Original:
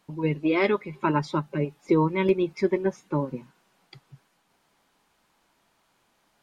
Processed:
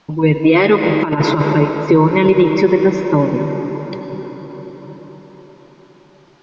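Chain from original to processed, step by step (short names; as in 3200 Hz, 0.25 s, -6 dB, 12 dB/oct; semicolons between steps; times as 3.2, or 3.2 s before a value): steep low-pass 6200 Hz 36 dB/oct; reverb RT60 5.7 s, pre-delay 73 ms, DRR 6.5 dB; 0.83–1.53 negative-ratio compressor -26 dBFS, ratio -0.5; maximiser +14.5 dB; gain -1 dB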